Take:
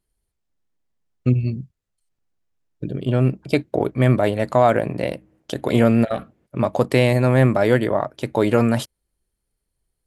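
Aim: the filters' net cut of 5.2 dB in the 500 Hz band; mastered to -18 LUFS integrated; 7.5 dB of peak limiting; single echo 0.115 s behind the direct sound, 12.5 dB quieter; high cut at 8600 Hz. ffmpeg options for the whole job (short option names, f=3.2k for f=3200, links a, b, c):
-af "lowpass=8.6k,equalizer=f=500:t=o:g=-6.5,alimiter=limit=-12.5dB:level=0:latency=1,aecho=1:1:115:0.237,volume=7dB"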